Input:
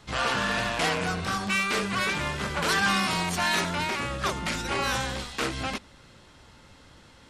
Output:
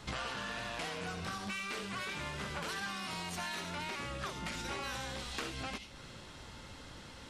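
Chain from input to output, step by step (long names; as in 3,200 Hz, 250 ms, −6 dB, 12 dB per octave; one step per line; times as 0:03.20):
downward compressor 16 to 1, threshold −39 dBFS, peak gain reduction 19 dB
on a send: high shelf with overshoot 2,100 Hz +12.5 dB, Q 1.5 + convolution reverb RT60 0.55 s, pre-delay 63 ms, DRR 11.5 dB
on the sum: level +2 dB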